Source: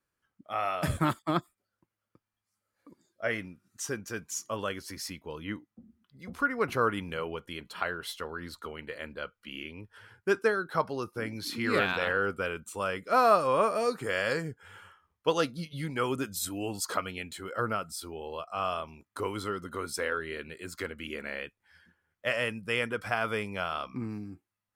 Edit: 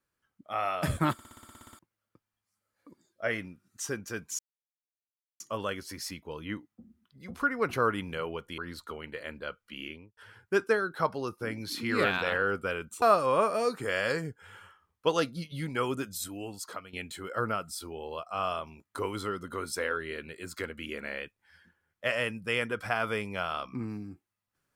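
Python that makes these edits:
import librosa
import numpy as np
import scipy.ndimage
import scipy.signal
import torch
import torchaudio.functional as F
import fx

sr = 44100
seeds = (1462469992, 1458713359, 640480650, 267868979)

y = fx.studio_fade_out(x, sr, start_s=9.62, length_s=0.3)
y = fx.edit(y, sr, fx.stutter_over(start_s=1.13, slice_s=0.06, count=11),
    fx.insert_silence(at_s=4.39, length_s=1.01),
    fx.cut(start_s=7.57, length_s=0.76),
    fx.cut(start_s=12.77, length_s=0.46),
    fx.fade_out_to(start_s=15.98, length_s=1.16, floor_db=-13.0), tone=tone)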